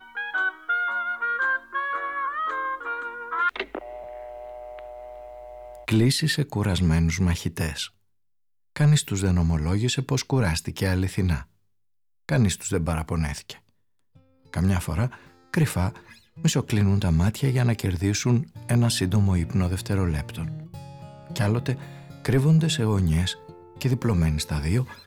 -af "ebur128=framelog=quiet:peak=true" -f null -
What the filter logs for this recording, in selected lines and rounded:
Integrated loudness:
  I:         -24.6 LUFS
  Threshold: -35.4 LUFS
Loudness range:
  LRA:         5.1 LU
  Threshold: -45.7 LUFS
  LRA low:   -28.8 LUFS
  LRA high:  -23.7 LUFS
True peak:
  Peak:      -11.2 dBFS